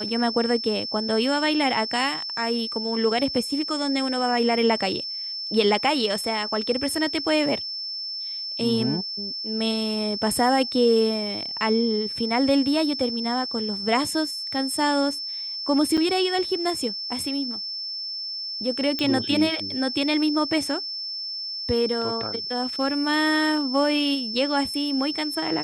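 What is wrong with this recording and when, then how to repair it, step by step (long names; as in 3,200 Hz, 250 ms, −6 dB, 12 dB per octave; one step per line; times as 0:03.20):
whistle 5,300 Hz −29 dBFS
0:15.97–0:15.98: drop-out 6.1 ms
0:18.99: click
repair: click removal
notch filter 5,300 Hz, Q 30
repair the gap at 0:15.97, 6.1 ms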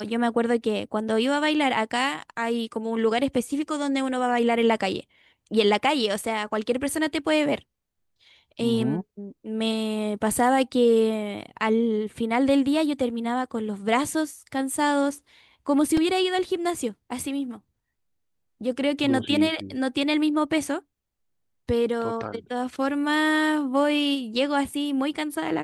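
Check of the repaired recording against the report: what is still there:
none of them is left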